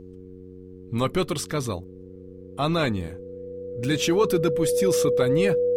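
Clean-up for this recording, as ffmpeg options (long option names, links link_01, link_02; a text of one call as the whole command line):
ffmpeg -i in.wav -af "bandreject=frequency=92.3:width_type=h:width=4,bandreject=frequency=184.6:width_type=h:width=4,bandreject=frequency=276.9:width_type=h:width=4,bandreject=frequency=369.2:width_type=h:width=4,bandreject=frequency=461.5:width_type=h:width=4,bandreject=frequency=490:width=30,agate=range=-21dB:threshold=-35dB" out.wav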